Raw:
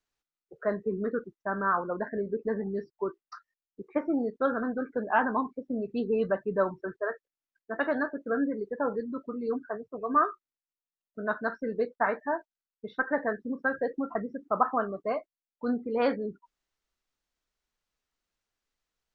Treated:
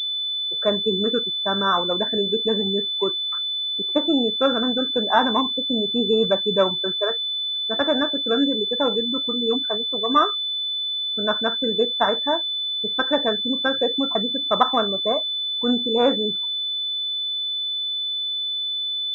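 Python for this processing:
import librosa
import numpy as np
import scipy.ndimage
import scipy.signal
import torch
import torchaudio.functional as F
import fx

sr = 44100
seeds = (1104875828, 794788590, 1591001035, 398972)

y = fx.pwm(x, sr, carrier_hz=3500.0)
y = F.gain(torch.from_numpy(y), 7.5).numpy()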